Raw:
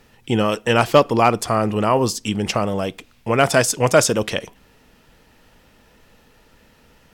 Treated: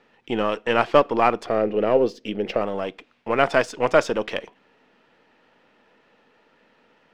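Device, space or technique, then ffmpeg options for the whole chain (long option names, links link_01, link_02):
crystal radio: -filter_complex "[0:a]highpass=270,lowpass=2900,aeval=exprs='if(lt(val(0),0),0.708*val(0),val(0))':channel_layout=same,asettb=1/sr,asplit=3[link_01][link_02][link_03];[link_01]atrim=end=1.464[link_04];[link_02]atrim=start=1.46:end=2.61,asetpts=PTS-STARTPTS,afade=type=in:duration=0.004:curve=qsin,afade=type=out:start_time=1.146:duration=0.004:curve=qsin,equalizer=frequency=500:width_type=o:width=1:gain=9,equalizer=frequency=1000:width_type=o:width=1:gain=-11,equalizer=frequency=8000:width_type=o:width=1:gain=-9[link_05];[link_03]atrim=start=2.606[link_06];[link_04][link_05]acrossfade=duration=0.004:curve1=hsin:curve2=qsin[link_07];[link_07][link_06]acrossfade=duration=0.004:curve1=qsin:curve2=hsin,volume=-1.5dB"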